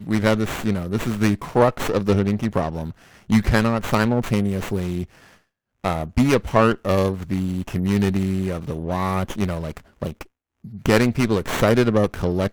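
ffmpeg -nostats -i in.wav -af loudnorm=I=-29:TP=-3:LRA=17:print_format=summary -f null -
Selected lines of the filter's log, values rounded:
Input Integrated:    -21.2 LUFS
Input True Peak:      -3.4 dBTP
Input LRA:             2.7 LU
Input Threshold:     -31.9 LUFS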